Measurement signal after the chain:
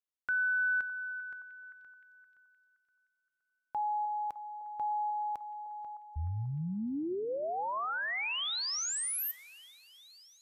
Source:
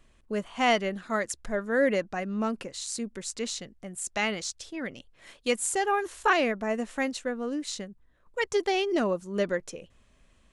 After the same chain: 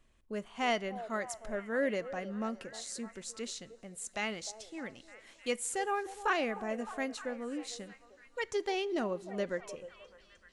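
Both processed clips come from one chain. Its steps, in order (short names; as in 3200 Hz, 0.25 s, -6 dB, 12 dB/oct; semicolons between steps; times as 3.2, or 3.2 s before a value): delay with a stepping band-pass 0.305 s, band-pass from 590 Hz, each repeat 0.7 oct, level -10 dB; two-slope reverb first 0.29 s, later 4.2 s, from -18 dB, DRR 19 dB; gain -7.5 dB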